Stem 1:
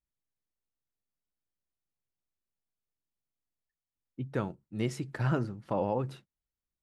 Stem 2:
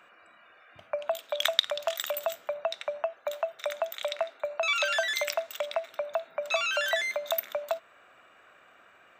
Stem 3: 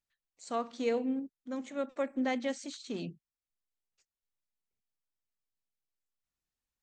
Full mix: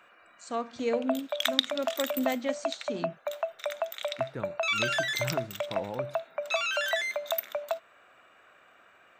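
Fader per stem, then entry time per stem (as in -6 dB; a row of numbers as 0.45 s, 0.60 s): -6.5 dB, -1.0 dB, +1.5 dB; 0.00 s, 0.00 s, 0.00 s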